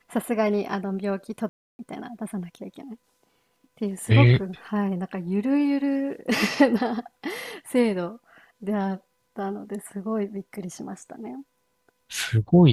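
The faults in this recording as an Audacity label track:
1.490000	1.790000	dropout 300 ms

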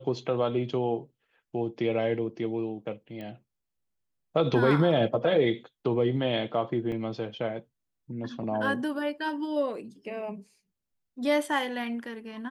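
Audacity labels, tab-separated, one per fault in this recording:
3.210000	3.210000	pop -28 dBFS
6.920000	6.920000	dropout 3.2 ms

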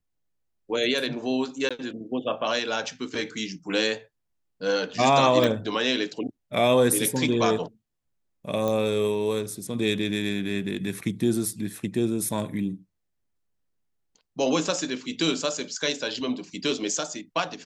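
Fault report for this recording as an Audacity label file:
1.690000	1.710000	dropout 16 ms
5.440000	5.440000	pop
8.680000	8.680000	pop -15 dBFS

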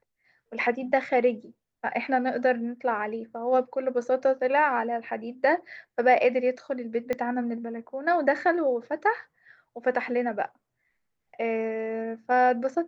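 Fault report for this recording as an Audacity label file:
7.130000	7.130000	pop -17 dBFS

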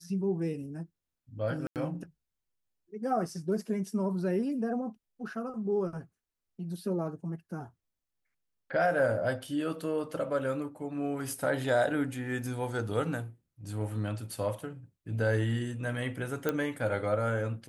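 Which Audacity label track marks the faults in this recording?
1.670000	1.760000	dropout 88 ms
16.490000	16.490000	pop -15 dBFS

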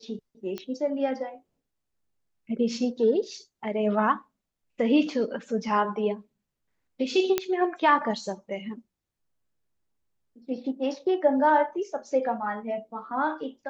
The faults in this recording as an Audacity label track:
0.580000	0.580000	pop -20 dBFS
7.380000	7.380000	pop -9 dBFS

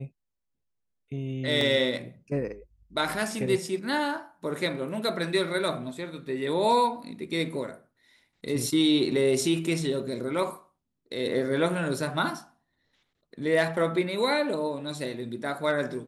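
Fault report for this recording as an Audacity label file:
1.610000	1.610000	dropout 2.4 ms

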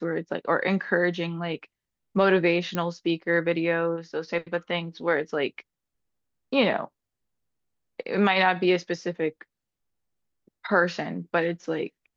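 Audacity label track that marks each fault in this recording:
2.750000	2.750000	pop -14 dBFS

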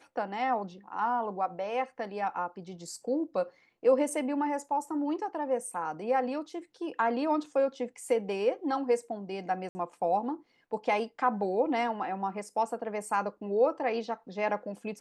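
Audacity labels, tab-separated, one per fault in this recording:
9.690000	9.750000	dropout 60 ms

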